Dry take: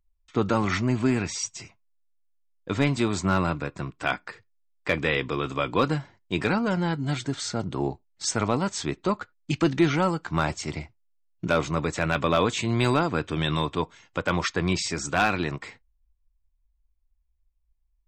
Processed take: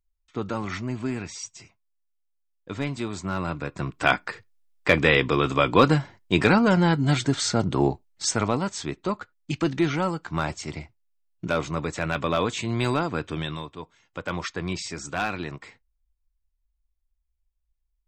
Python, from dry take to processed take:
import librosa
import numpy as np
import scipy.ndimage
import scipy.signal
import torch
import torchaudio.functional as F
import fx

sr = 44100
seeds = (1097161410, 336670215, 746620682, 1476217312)

y = fx.gain(x, sr, db=fx.line((3.33, -6.0), (4.0, 6.0), (7.83, 6.0), (8.78, -2.0), (13.35, -2.0), (13.73, -12.5), (14.28, -5.0)))